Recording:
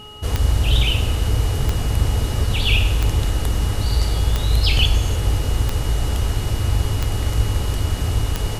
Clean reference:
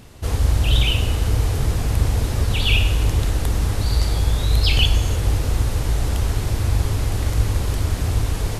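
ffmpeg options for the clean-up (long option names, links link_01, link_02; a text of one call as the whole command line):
ffmpeg -i in.wav -af "adeclick=threshold=4,bandreject=frequency=423.5:width_type=h:width=4,bandreject=frequency=847:width_type=h:width=4,bandreject=frequency=1270.5:width_type=h:width=4,bandreject=frequency=2900:width=30" out.wav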